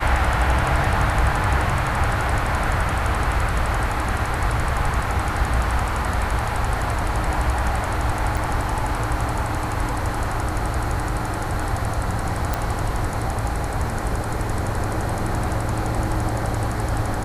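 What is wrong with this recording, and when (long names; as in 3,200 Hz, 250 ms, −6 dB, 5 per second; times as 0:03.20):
0:08.37: drop-out 2.7 ms
0:12.54: click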